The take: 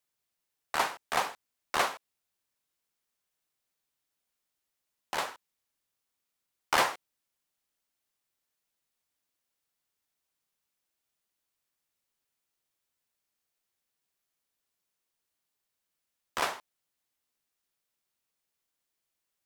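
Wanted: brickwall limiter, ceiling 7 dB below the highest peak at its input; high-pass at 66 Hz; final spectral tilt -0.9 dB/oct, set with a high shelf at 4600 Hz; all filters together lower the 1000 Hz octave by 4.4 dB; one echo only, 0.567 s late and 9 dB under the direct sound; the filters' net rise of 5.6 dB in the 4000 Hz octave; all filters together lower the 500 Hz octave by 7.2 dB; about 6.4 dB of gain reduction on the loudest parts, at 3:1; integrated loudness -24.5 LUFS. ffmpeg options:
-af "highpass=66,equalizer=f=500:t=o:g=-8.5,equalizer=f=1k:t=o:g=-3.5,equalizer=f=4k:t=o:g=5.5,highshelf=f=4.6k:g=4,acompressor=threshold=-28dB:ratio=3,alimiter=limit=-20.5dB:level=0:latency=1,aecho=1:1:567:0.355,volume=14.5dB"

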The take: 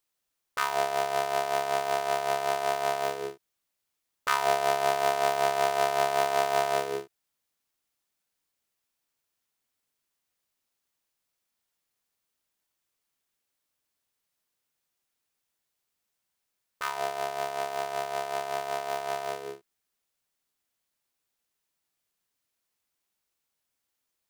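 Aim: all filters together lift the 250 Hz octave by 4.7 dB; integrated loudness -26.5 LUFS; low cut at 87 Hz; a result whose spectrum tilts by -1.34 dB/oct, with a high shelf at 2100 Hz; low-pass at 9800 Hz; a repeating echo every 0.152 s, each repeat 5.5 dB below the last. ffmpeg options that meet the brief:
-af "highpass=87,lowpass=9.8k,equalizer=f=250:t=o:g=8,highshelf=f=2.1k:g=8.5,aecho=1:1:152|304|456|608|760|912|1064:0.531|0.281|0.149|0.079|0.0419|0.0222|0.0118,volume=-0.5dB"

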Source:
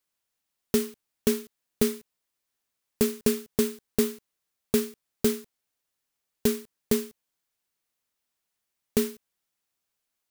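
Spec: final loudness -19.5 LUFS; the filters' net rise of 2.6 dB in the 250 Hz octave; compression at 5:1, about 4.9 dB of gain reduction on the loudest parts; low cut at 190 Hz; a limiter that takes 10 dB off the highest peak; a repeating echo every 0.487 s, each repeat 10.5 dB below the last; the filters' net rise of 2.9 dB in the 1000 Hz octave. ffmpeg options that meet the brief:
-af "highpass=190,equalizer=f=250:t=o:g=4.5,equalizer=f=1k:t=o:g=3.5,acompressor=threshold=-21dB:ratio=5,alimiter=limit=-20dB:level=0:latency=1,aecho=1:1:487|974|1461:0.299|0.0896|0.0269,volume=17dB"

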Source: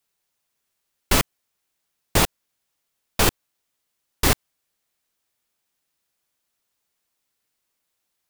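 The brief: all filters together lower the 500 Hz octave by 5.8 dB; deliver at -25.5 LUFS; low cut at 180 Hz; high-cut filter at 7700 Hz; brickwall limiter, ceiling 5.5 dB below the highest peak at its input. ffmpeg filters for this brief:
-af "highpass=180,lowpass=7.7k,equalizer=f=500:t=o:g=-7.5,volume=2.5dB,alimiter=limit=-11dB:level=0:latency=1"

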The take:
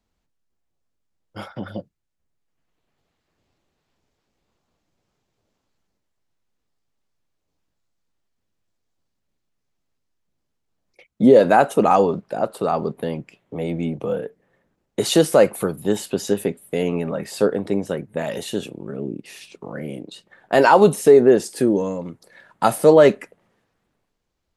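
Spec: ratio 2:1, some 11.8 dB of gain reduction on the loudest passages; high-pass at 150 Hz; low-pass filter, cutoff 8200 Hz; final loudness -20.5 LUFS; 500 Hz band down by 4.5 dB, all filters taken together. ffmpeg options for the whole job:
-af "highpass=150,lowpass=8.2k,equalizer=f=500:t=o:g=-5.5,acompressor=threshold=-33dB:ratio=2,volume=12dB"

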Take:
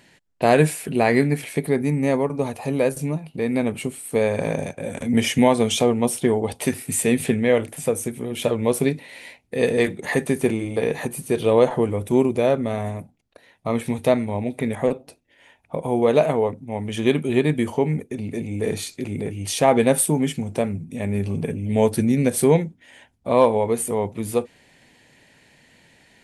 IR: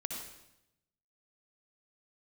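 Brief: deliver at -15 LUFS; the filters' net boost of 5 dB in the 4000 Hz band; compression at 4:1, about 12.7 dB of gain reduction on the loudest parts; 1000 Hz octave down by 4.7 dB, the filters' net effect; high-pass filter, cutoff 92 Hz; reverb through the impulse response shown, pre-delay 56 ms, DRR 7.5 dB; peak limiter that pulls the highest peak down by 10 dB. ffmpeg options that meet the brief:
-filter_complex "[0:a]highpass=92,equalizer=f=1k:t=o:g=-7,equalizer=f=4k:t=o:g=7,acompressor=threshold=-28dB:ratio=4,alimiter=limit=-22dB:level=0:latency=1,asplit=2[a][b];[1:a]atrim=start_sample=2205,adelay=56[c];[b][c]afir=irnorm=-1:irlink=0,volume=-8dB[d];[a][d]amix=inputs=2:normalize=0,volume=17.5dB"

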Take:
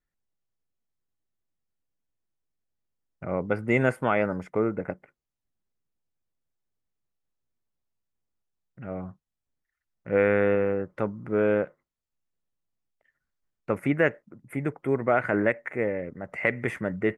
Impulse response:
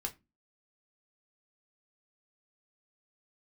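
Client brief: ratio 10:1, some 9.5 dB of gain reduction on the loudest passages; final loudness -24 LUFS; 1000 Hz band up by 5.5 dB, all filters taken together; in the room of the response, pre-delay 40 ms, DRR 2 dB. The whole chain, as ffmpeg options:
-filter_complex "[0:a]equalizer=f=1k:t=o:g=8,acompressor=threshold=-24dB:ratio=10,asplit=2[a][b];[1:a]atrim=start_sample=2205,adelay=40[c];[b][c]afir=irnorm=-1:irlink=0,volume=-2dB[d];[a][d]amix=inputs=2:normalize=0,volume=5.5dB"

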